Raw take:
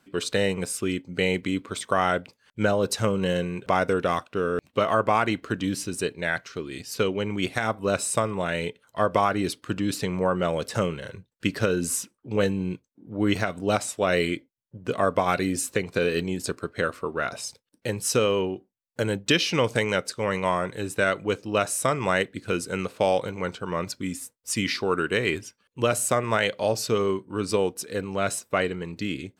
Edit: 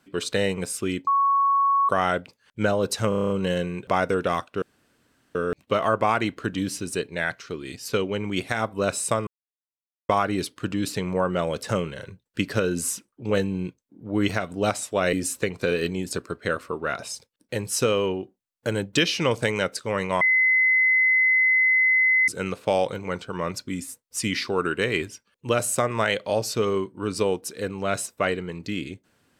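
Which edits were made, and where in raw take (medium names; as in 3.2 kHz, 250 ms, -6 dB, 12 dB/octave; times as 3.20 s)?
1.07–1.89 s: bleep 1.11 kHz -17 dBFS
3.09 s: stutter 0.03 s, 8 plays
4.41 s: insert room tone 0.73 s
8.33–9.15 s: mute
14.19–15.46 s: delete
20.54–22.61 s: bleep 2.04 kHz -16 dBFS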